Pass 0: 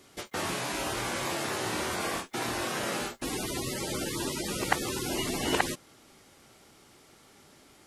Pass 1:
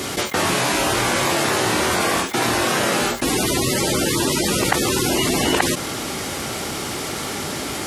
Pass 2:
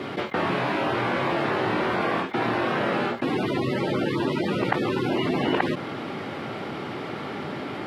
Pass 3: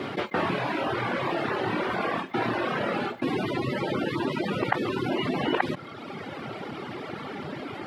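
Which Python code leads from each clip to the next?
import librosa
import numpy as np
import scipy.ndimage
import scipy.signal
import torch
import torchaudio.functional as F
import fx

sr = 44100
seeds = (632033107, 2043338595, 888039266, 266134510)

y1 = scipy.signal.sosfilt(scipy.signal.butter(2, 46.0, 'highpass', fs=sr, output='sos'), x)
y1 = fx.env_flatten(y1, sr, amount_pct=70)
y1 = y1 * 10.0 ** (6.0 / 20.0)
y2 = scipy.signal.sosfilt(scipy.signal.butter(4, 110.0, 'highpass', fs=sr, output='sos'), y1)
y2 = fx.air_absorb(y2, sr, metres=410.0)
y2 = y2 * 10.0 ** (-2.5 / 20.0)
y3 = fx.dereverb_blind(y2, sr, rt60_s=1.7)
y3 = y3 + 10.0 ** (-20.5 / 20.0) * np.pad(y3, (int(140 * sr / 1000.0), 0))[:len(y3)]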